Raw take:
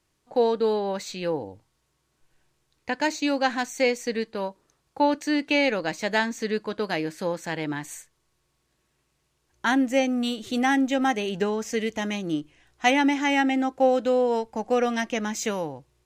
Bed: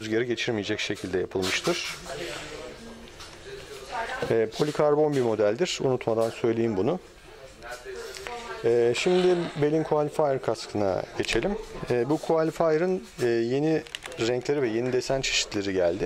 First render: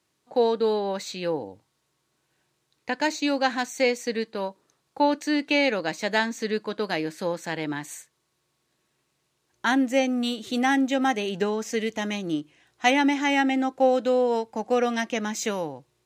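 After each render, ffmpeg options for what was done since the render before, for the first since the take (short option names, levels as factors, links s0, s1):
-af "highpass=130,equalizer=f=3900:t=o:w=0.23:g=3"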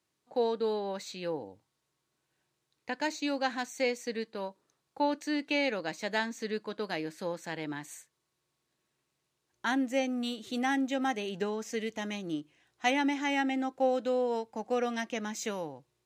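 -af "volume=0.422"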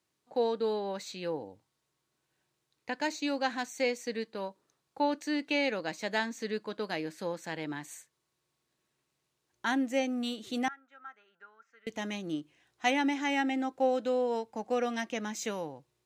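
-filter_complex "[0:a]asettb=1/sr,asplit=3[s0][s1][s2];[s0]atrim=end=10.684[s3];[s1]atrim=start=10.68:end=11.87,asetpts=PTS-STARTPTS,afade=t=in:d=0.004:c=qsin,afade=t=out:st=1.186:d=0.004:c=qsin,bandpass=f=1400:t=q:w=14[s4];[s2]atrim=start=11.866[s5];[s3][s4]acrossfade=d=0.004:c1=hsin:c2=qsin[s6];[s6][s5]acrossfade=d=0.004:c1=qsin:c2=hsin"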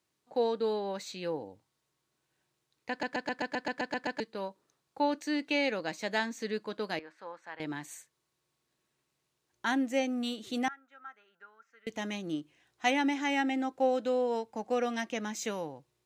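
-filter_complex "[0:a]asettb=1/sr,asplit=3[s0][s1][s2];[s0]atrim=end=6.994[s3];[s1]atrim=start=6.99:end=7.6,asetpts=PTS-STARTPTS,afade=t=in:d=0.004:c=qsin,afade=t=out:st=0.606:d=0.004:c=qsin,bandpass=f=1200:t=q:w=1.7[s4];[s2]atrim=start=7.596[s5];[s3][s4]acrossfade=d=0.004:c1=hsin:c2=qsin[s6];[s6][s5]acrossfade=d=0.004:c1=qsin:c2=hsin,asplit=11[s7][s8][s9][s10][s11][s12][s13][s14][s15][s16][s17];[s7]atrim=end=3.032[s18];[s8]atrim=start=2.898:end=3.032[s19];[s9]atrim=start=2.898:end=3.032[s20];[s10]atrim=start=2.898:end=3.032[s21];[s11]atrim=start=2.898:end=3.032[s22];[s12]atrim=start=2.898:end=3.032[s23];[s13]atrim=start=2.898:end=3.032[s24];[s14]atrim=start=2.898:end=3.032[s25];[s15]atrim=start=2.898:end=3.032[s26];[s16]atrim=start=2.898:end=3.032[s27];[s17]atrim=start=4.198[s28];[s18][s19]acrossfade=d=0.004:c1=hsin:c2=hsin[s29];[s29][s20]acrossfade=d=0.004:c1=hsin:c2=hsin[s30];[s30][s21]acrossfade=d=0.004:c1=hsin:c2=hsin[s31];[s31][s22]acrossfade=d=0.004:c1=hsin:c2=hsin[s32];[s32][s23]acrossfade=d=0.004:c1=hsin:c2=hsin[s33];[s33][s24]acrossfade=d=0.004:c1=hsin:c2=hsin[s34];[s34][s25]acrossfade=d=0.004:c1=hsin:c2=hsin[s35];[s35][s26]acrossfade=d=0.004:c1=hsin:c2=hsin[s36];[s36][s27]acrossfade=d=0.004:c1=hsin:c2=hsin[s37];[s37][s28]acrossfade=d=0.004:c1=hsin:c2=hsin"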